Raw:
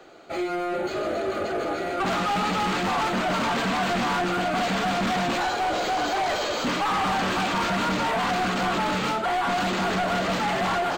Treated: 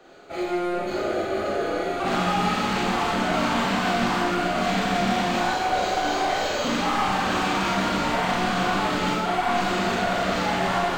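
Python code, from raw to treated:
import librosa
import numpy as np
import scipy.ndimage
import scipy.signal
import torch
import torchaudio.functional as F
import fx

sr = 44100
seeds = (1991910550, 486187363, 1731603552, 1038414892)

y = fx.low_shelf(x, sr, hz=160.0, db=3.5)
y = fx.rev_schroeder(y, sr, rt60_s=1.0, comb_ms=30, drr_db=-4.0)
y = F.gain(torch.from_numpy(y), -4.5).numpy()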